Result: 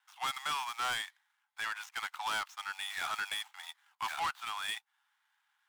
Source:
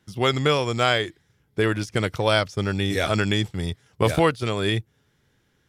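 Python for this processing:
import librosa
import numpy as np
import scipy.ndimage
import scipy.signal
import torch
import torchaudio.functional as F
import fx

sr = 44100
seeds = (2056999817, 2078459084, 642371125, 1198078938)

y = scipy.signal.medfilt(x, 9)
y = scipy.signal.sosfilt(scipy.signal.butter(12, 800.0, 'highpass', fs=sr, output='sos'), y)
y = fx.peak_eq(y, sr, hz=2000.0, db=-3.0, octaves=0.59)
y = 10.0 ** (-27.0 / 20.0) * np.tanh(y / 10.0 ** (-27.0 / 20.0))
y = F.gain(torch.from_numpy(y), -2.5).numpy()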